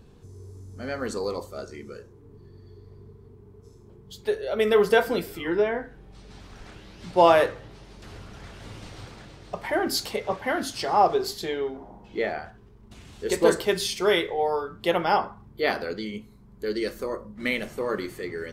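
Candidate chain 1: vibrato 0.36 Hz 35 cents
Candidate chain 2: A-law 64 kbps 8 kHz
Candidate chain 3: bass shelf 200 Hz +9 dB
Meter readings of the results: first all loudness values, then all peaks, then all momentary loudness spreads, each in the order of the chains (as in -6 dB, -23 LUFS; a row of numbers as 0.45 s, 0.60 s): -25.5 LUFS, -26.0 LUFS, -24.5 LUFS; -5.0 dBFS, -5.0 dBFS, -4.0 dBFS; 22 LU, 23 LU, 22 LU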